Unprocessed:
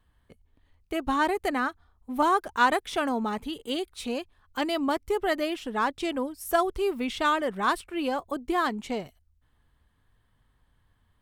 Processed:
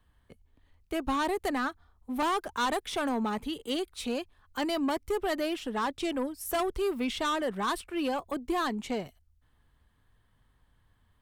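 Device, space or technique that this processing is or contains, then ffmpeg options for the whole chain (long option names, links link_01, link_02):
one-band saturation: -filter_complex "[0:a]acrossover=split=240|3800[link_01][link_02][link_03];[link_02]asoftclip=type=tanh:threshold=-25.5dB[link_04];[link_01][link_04][link_03]amix=inputs=3:normalize=0"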